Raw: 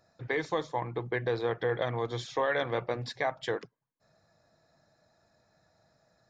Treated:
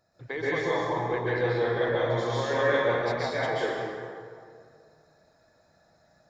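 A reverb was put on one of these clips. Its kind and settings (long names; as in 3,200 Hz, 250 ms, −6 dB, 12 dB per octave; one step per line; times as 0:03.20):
dense smooth reverb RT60 2.1 s, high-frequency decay 0.6×, pre-delay 115 ms, DRR −8.5 dB
level −4 dB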